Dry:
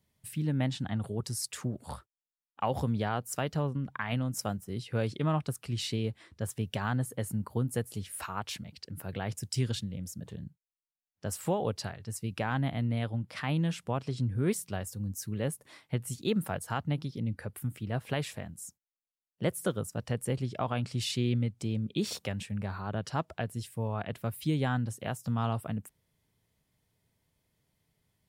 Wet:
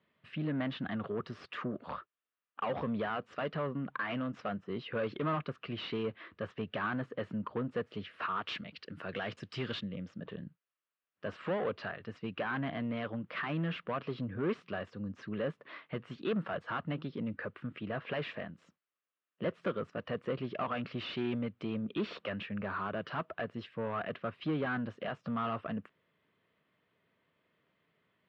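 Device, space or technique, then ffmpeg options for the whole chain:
overdrive pedal into a guitar cabinet: -filter_complex "[0:a]asplit=2[link_01][link_02];[link_02]highpass=frequency=720:poles=1,volume=23dB,asoftclip=type=tanh:threshold=-17.5dB[link_03];[link_01][link_03]amix=inputs=2:normalize=0,lowpass=frequency=1000:poles=1,volume=-6dB,highpass=110,equalizer=frequency=120:width_type=q:width=4:gain=-5,equalizer=frequency=830:width_type=q:width=4:gain=-9,equalizer=frequency=1200:width_type=q:width=4:gain=6,equalizer=frequency=1700:width_type=q:width=4:gain=3,equalizer=frequency=2800:width_type=q:width=4:gain=4,lowpass=frequency=3700:width=0.5412,lowpass=frequency=3700:width=1.3066,asettb=1/sr,asplit=3[link_04][link_05][link_06];[link_04]atrim=end=8.424[link_07];[link_05]atrim=start=8.42:end=9.81,asetpts=PTS-STARTPTS,afade=type=in:duration=0.004:curve=qsin,afade=type=out:start_time=1.386:duration=0.004:curve=qsin,aemphasis=mode=production:type=75fm[link_08];[link_06]atrim=start=9.806[link_09];[link_07][link_08]acrossfade=duration=0.004:curve1=hsin:curve2=qsin[link_10];[link_10][link_09]acrossfade=duration=0.004:curve1=qsin:curve2=hsin,volume=-5.5dB"

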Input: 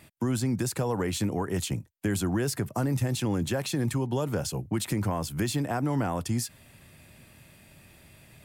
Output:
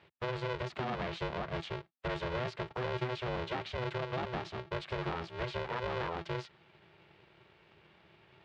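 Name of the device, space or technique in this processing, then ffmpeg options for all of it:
ring modulator pedal into a guitar cabinet: -af "aeval=exprs='val(0)*sgn(sin(2*PI*250*n/s))':channel_layout=same,highpass=76,equalizer=frequency=100:width_type=q:width=4:gain=-4,equalizer=frequency=280:width_type=q:width=4:gain=-7,equalizer=frequency=460:width_type=q:width=4:gain=-3,lowpass=frequency=3800:width=0.5412,lowpass=frequency=3800:width=1.3066,volume=-6.5dB"

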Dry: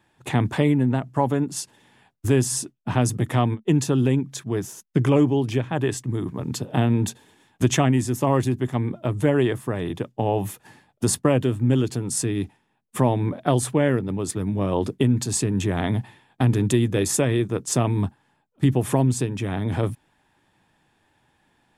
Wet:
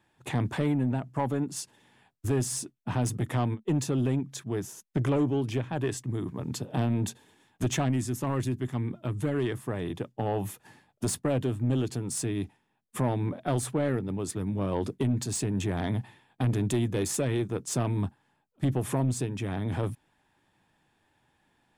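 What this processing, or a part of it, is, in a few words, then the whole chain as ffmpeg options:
saturation between pre-emphasis and de-emphasis: -filter_complex "[0:a]highshelf=frequency=5200:gain=9.5,asoftclip=type=tanh:threshold=-14dB,highshelf=frequency=5200:gain=-9.5,asettb=1/sr,asplit=3[link_01][link_02][link_03];[link_01]atrim=end=7.894[link_04];[link_02]atrim=start=7.89:end=9.57,asetpts=PTS-STARTPTS,afade=type=in:duration=0.004:curve=qsin,afade=type=out:start_time=1.676:duration=0.004:curve=qsin,equalizer=frequency=640:width_type=o:width=1.1:gain=-5.5[link_05];[link_03]atrim=start=9.566[link_06];[link_04][link_05]acrossfade=duration=0.004:curve1=hsin:curve2=qsin[link_07];[link_07][link_06]acrossfade=duration=0.004:curve1=qsin:curve2=hsin,volume=-5dB"

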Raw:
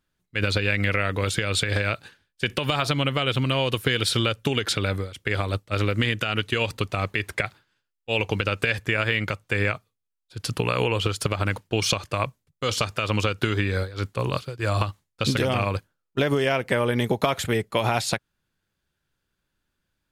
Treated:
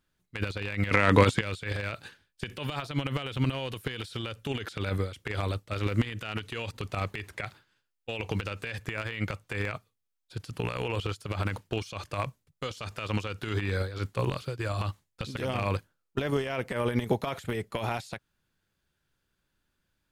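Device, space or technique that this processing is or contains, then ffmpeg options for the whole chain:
de-esser from a sidechain: -filter_complex "[0:a]asplit=2[link_01][link_02];[link_02]highpass=6800,apad=whole_len=887048[link_03];[link_01][link_03]sidechaincompress=threshold=-48dB:ratio=16:attack=0.63:release=49,asettb=1/sr,asplit=3[link_04][link_05][link_06];[link_04]atrim=end=0.914[link_07];[link_05]atrim=start=0.91:end=1.41,asetpts=PTS-STARTPTS,afade=type=in:duration=0.004:curve=qsin,afade=type=out:start_time=0.496:duration=0.004:curve=qsin,equalizer=frequency=125:width_type=o:width=1:gain=8,equalizer=frequency=250:width_type=o:width=1:gain=12,equalizer=frequency=500:width_type=o:width=1:gain=5,equalizer=frequency=1000:width_type=o:width=1:gain=11,equalizer=frequency=2000:width_type=o:width=1:gain=7,equalizer=frequency=4000:width_type=o:width=1:gain=6,equalizer=frequency=8000:width_type=o:width=1:gain=9[link_08];[link_06]atrim=start=1.406[link_09];[link_07][link_08]acrossfade=duration=0.004:curve1=hsin:curve2=qsin[link_10];[link_10][link_09]acrossfade=duration=0.004:curve1=qsin:curve2=hsin"

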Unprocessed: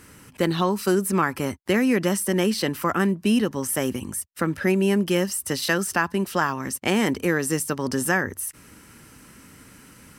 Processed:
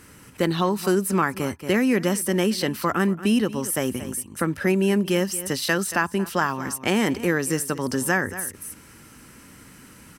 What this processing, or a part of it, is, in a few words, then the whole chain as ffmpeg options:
ducked delay: -filter_complex "[0:a]asplit=3[link_01][link_02][link_03];[link_02]adelay=229,volume=-6dB[link_04];[link_03]apad=whole_len=459325[link_05];[link_04][link_05]sidechaincompress=threshold=-34dB:ratio=8:attack=20:release=225[link_06];[link_01][link_06]amix=inputs=2:normalize=0"

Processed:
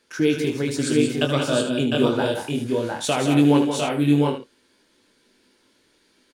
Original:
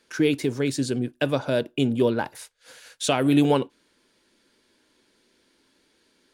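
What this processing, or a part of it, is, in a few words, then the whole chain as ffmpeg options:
slapback doubling: -filter_complex "[0:a]asettb=1/sr,asplit=3[link_01][link_02][link_03];[link_01]atrim=end=0.784[link_04];[link_02]atrim=start=0.78:end=1.67,asetpts=PTS-STARTPTS,afade=type=in:duration=0.004:curve=qsin,afade=type=out:start_time=0.886:duration=0.004:curve=qsin,equalizer=frequency=1250:width_type=o:width=0.33:gain=8,equalizer=frequency=2000:width_type=o:width=0.33:gain=-7,equalizer=frequency=3150:width_type=o:width=0.33:gain=11,equalizer=frequency=8000:width_type=o:width=0.33:gain=11[link_05];[link_03]atrim=start=1.666[link_06];[link_04][link_05]acrossfade=duration=0.004:curve1=hsin:curve2=qsin[link_07];[link_07][link_06]acrossfade=duration=0.004:curve1=qsin:curve2=hsin,aecho=1:1:163|187|704|731:0.266|0.422|0.596|0.531,asplit=3[link_08][link_09][link_10];[link_09]adelay=20,volume=-7dB[link_11];[link_10]adelay=76,volume=-8.5dB[link_12];[link_08][link_11][link_12]amix=inputs=3:normalize=0,volume=-1dB"

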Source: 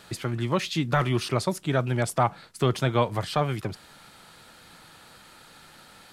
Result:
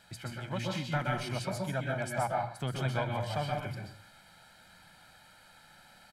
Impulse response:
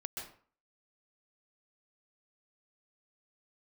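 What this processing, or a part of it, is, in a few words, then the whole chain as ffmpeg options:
microphone above a desk: -filter_complex "[0:a]bandreject=frequency=60:width_type=h:width=6,bandreject=frequency=120:width_type=h:width=6,aecho=1:1:1.3:0.63[link_01];[1:a]atrim=start_sample=2205[link_02];[link_01][link_02]afir=irnorm=-1:irlink=0,equalizer=frequency=1900:width=5.5:gain=5,volume=-8dB"

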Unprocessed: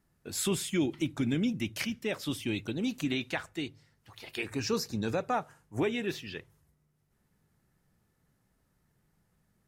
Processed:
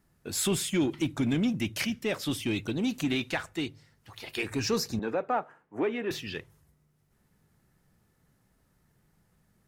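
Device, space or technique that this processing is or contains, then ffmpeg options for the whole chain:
parallel distortion: -filter_complex "[0:a]asplit=2[link_01][link_02];[link_02]asoftclip=type=hard:threshold=-32.5dB,volume=-4dB[link_03];[link_01][link_03]amix=inputs=2:normalize=0,asettb=1/sr,asplit=3[link_04][link_05][link_06];[link_04]atrim=end=4.994[link_07];[link_05]atrim=start=4.99:end=6.11,asetpts=PTS-STARTPTS,afade=type=in:duration=0.004:curve=qsin,afade=type=out:start_time=1.116:duration=0.004:curve=qsin,acrossover=split=220 2500:gain=0.0891 1 0.0794[link_08][link_09][link_10];[link_08][link_09][link_10]amix=inputs=3:normalize=0[link_11];[link_06]atrim=start=6.106[link_12];[link_07][link_11]acrossfade=duration=0.004:curve1=hsin:curve2=qsin[link_13];[link_13][link_12]acrossfade=duration=0.004:curve1=qsin:curve2=hsin"

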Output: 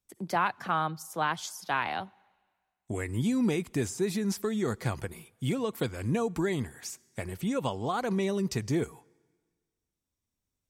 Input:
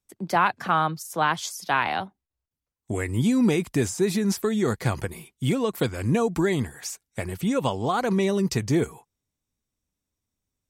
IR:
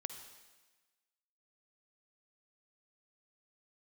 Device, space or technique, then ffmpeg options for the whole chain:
ducked reverb: -filter_complex "[0:a]asplit=3[link_01][link_02][link_03];[1:a]atrim=start_sample=2205[link_04];[link_02][link_04]afir=irnorm=-1:irlink=0[link_05];[link_03]apad=whole_len=471493[link_06];[link_05][link_06]sidechaincompress=threshold=-36dB:ratio=10:attack=28:release=1440,volume=-0.5dB[link_07];[link_01][link_07]amix=inputs=2:normalize=0,volume=-7dB"

